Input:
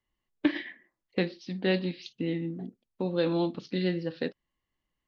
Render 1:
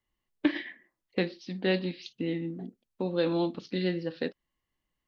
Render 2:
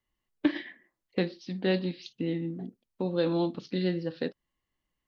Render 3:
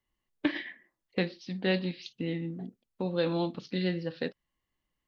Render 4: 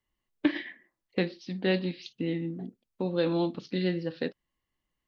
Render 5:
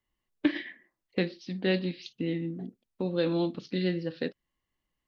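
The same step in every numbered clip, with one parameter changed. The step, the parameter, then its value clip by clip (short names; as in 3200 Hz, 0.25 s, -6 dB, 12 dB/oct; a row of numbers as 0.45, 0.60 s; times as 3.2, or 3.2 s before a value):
dynamic EQ, frequency: 130, 2300, 320, 7700, 890 Hz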